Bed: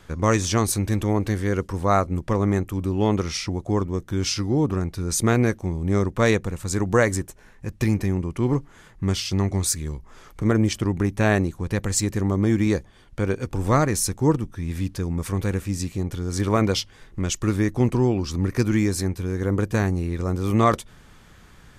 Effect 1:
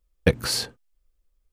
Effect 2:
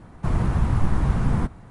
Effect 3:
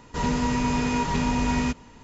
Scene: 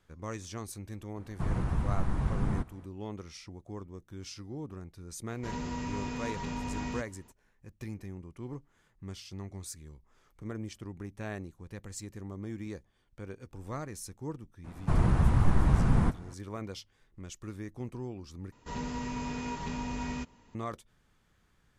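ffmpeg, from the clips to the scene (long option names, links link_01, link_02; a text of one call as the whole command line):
ffmpeg -i bed.wav -i cue0.wav -i cue1.wav -i cue2.wav -filter_complex "[2:a]asplit=2[link_01][link_02];[3:a]asplit=2[link_03][link_04];[0:a]volume=-19.5dB,asplit=2[link_05][link_06];[link_05]atrim=end=18.524[link_07];[link_04]atrim=end=2.03,asetpts=PTS-STARTPTS,volume=-12dB[link_08];[link_06]atrim=start=20.546[link_09];[link_01]atrim=end=1.7,asetpts=PTS-STARTPTS,volume=-9dB,afade=type=in:duration=0.004:curve=hsin,afade=type=out:start_time=1.696:duration=0.004:curve=hsin,adelay=1160[link_10];[link_03]atrim=end=2.03,asetpts=PTS-STARTPTS,volume=-12.5dB,afade=type=in:duration=0.004:curve=hsin,afade=type=out:start_time=2.026:duration=0.004:curve=hsin,adelay=233289S[link_11];[link_02]atrim=end=1.7,asetpts=PTS-STARTPTS,volume=-3dB,afade=type=in:duration=0.004:curve=hsin,afade=type=out:start_time=1.696:duration=0.004:curve=hsin,adelay=14640[link_12];[link_07][link_08]acrossfade=duration=0.004:curve1=hsin:curve2=hsin[link_13];[link_13][link_09]acrossfade=duration=0.004:curve1=hsin:curve2=hsin[link_14];[link_14][link_10][link_11][link_12]amix=inputs=4:normalize=0" out.wav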